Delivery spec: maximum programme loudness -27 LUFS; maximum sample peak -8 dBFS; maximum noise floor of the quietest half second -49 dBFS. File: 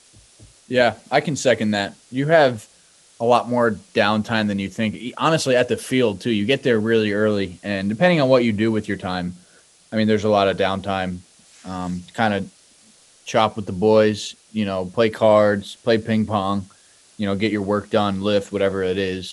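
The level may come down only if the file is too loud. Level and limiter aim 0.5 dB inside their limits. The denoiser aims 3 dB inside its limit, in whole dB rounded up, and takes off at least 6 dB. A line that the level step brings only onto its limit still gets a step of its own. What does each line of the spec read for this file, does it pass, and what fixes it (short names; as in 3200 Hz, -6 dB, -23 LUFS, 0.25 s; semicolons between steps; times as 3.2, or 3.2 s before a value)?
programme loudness -20.0 LUFS: fail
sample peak -2.0 dBFS: fail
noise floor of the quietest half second -53 dBFS: OK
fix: gain -7.5 dB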